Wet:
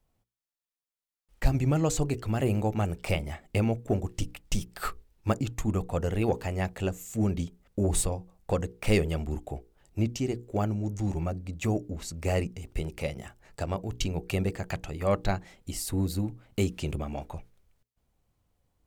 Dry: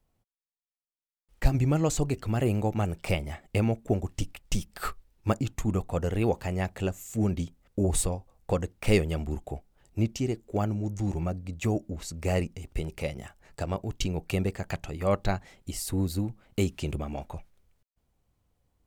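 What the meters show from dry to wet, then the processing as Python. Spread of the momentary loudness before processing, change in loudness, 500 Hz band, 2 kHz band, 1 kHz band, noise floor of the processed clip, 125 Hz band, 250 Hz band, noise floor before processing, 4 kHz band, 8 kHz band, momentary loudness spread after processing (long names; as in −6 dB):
10 LU, −0.5 dB, −0.5 dB, 0.0 dB, 0.0 dB, below −85 dBFS, −0.5 dB, −0.5 dB, below −85 dBFS, 0.0 dB, 0.0 dB, 10 LU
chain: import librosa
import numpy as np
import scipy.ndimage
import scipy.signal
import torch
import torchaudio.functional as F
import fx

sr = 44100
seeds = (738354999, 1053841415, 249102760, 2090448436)

p1 = fx.hum_notches(x, sr, base_hz=60, count=8)
p2 = np.clip(p1, -10.0 ** (-20.5 / 20.0), 10.0 ** (-20.5 / 20.0))
p3 = p1 + F.gain(torch.from_numpy(p2), -11.0).numpy()
y = F.gain(torch.from_numpy(p3), -2.0).numpy()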